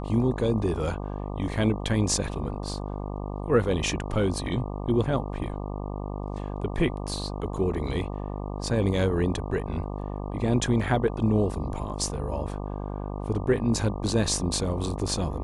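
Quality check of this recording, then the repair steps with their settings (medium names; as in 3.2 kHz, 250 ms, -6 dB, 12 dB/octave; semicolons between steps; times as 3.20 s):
buzz 50 Hz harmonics 24 -33 dBFS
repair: de-hum 50 Hz, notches 24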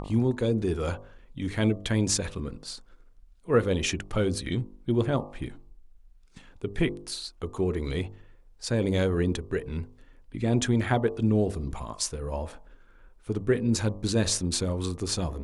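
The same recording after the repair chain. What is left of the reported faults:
nothing left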